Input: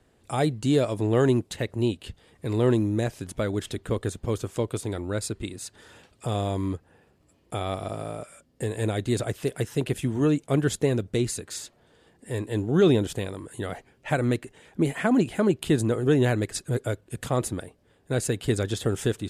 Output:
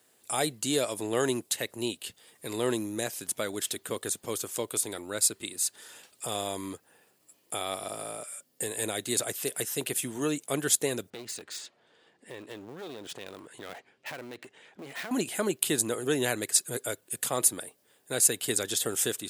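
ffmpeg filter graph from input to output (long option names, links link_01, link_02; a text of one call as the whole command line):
ffmpeg -i in.wav -filter_complex "[0:a]asettb=1/sr,asplit=3[link_01][link_02][link_03];[link_01]atrim=end=11.104[link_04];[link_02]atrim=start=11.1:end=15.11,asetpts=PTS-STARTPTS,afade=type=in:duration=0.004:curve=qsin,afade=type=out:start_time=4.006:duration=0.004:curve=qsin,lowpass=3400,acompressor=threshold=-29dB:ratio=8:attack=3.2:release=140:knee=1:detection=peak,aeval=exprs='clip(val(0),-1,0.0106)':channel_layout=same[link_05];[link_03]atrim=start=15.106[link_06];[link_04][link_05]acrossfade=duration=0.004:curve1=hsin:curve2=qsin[link_07];[link_07][link_06]acrossfade=duration=0.004:curve1=qsin:curve2=hsin,highpass=110,aemphasis=mode=production:type=riaa,volume=-2.5dB" out.wav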